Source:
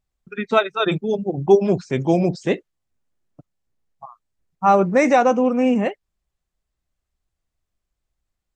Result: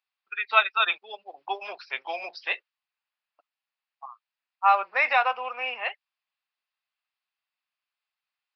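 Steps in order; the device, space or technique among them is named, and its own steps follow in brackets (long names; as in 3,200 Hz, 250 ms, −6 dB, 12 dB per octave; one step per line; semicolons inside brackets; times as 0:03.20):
musical greeting card (downsampling to 11,025 Hz; high-pass filter 890 Hz 24 dB per octave; parametric band 2,600 Hz +7 dB 0.28 octaves)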